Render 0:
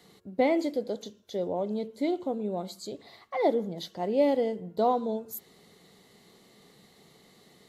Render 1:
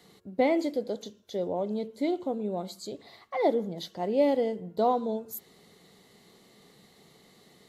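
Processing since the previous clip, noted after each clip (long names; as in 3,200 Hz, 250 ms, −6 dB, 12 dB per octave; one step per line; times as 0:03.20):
no processing that can be heard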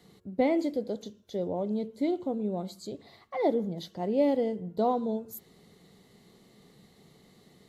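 low-shelf EQ 290 Hz +9.5 dB
level −4 dB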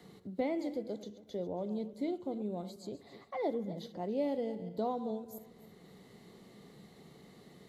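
feedback delay that plays each chunk backwards 138 ms, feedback 43%, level −14 dB
multiband upward and downward compressor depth 40%
level −7 dB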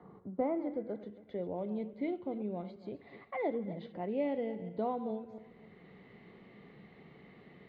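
high-frequency loss of the air 140 metres
low-pass filter sweep 1,100 Hz → 2,400 Hz, 0:00.28–0:01.50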